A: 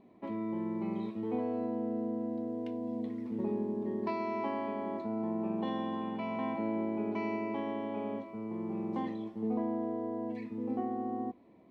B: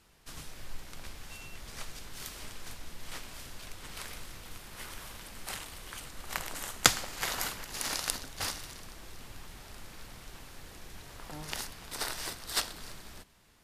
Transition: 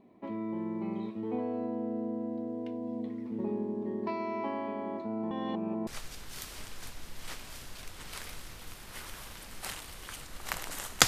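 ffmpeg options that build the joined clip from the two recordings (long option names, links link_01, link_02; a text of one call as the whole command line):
ffmpeg -i cue0.wav -i cue1.wav -filter_complex "[0:a]apad=whole_dur=11.07,atrim=end=11.07,asplit=2[link_01][link_02];[link_01]atrim=end=5.312[link_03];[link_02]atrim=start=5.308:end=5.872,asetpts=PTS-STARTPTS,areverse[link_04];[1:a]atrim=start=1.708:end=6.91[link_05];[link_03][link_04]acrossfade=duration=0.004:curve1=hsin:curve2=hsin[link_06];[link_06][link_05]acrossfade=duration=0.004:curve1=hsin:curve2=hsin" out.wav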